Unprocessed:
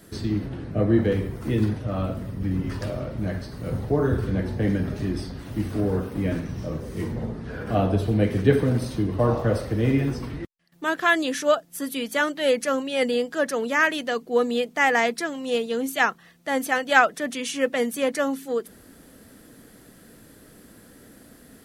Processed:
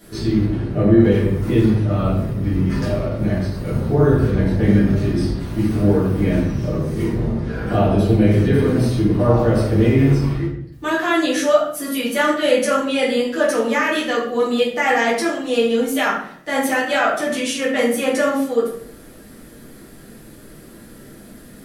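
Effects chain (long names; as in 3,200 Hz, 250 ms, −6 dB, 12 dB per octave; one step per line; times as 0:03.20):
brickwall limiter −14 dBFS, peak gain reduction 10.5 dB
rectangular room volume 99 cubic metres, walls mixed, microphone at 1.9 metres
level −1 dB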